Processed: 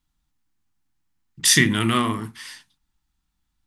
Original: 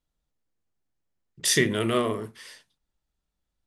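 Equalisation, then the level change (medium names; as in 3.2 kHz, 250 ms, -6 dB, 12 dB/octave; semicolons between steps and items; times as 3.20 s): high-order bell 500 Hz -14 dB 1 oct; +7.0 dB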